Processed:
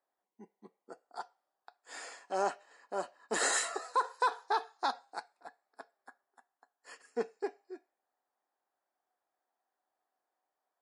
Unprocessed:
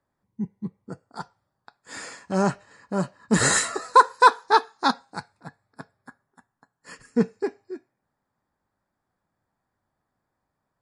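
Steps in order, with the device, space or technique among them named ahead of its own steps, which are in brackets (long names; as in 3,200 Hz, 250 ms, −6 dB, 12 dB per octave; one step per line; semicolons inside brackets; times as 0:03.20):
laptop speaker (high-pass filter 350 Hz 24 dB per octave; parametric band 730 Hz +9.5 dB 0.25 octaves; parametric band 3,000 Hz +4 dB 0.28 octaves; brickwall limiter −11.5 dBFS, peak gain reduction 10 dB)
level −8.5 dB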